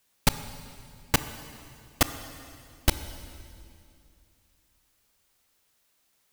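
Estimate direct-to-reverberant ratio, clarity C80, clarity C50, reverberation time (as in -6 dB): 11.0 dB, 12.5 dB, 12.0 dB, 2.4 s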